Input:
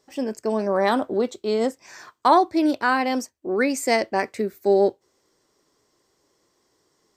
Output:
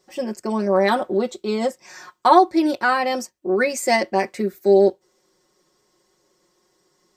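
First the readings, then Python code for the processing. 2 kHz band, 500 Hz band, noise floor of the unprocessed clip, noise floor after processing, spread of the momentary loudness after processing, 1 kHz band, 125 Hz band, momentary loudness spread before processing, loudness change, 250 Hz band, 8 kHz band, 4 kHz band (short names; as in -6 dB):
+2.5 dB, +3.0 dB, -69 dBFS, -66 dBFS, 10 LU, +3.0 dB, n/a, 9 LU, +2.5 dB, +1.5 dB, +2.5 dB, +2.5 dB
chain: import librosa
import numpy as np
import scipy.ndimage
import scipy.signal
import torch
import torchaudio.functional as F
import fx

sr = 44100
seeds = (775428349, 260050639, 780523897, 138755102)

y = x + 0.86 * np.pad(x, (int(5.5 * sr / 1000.0), 0))[:len(x)]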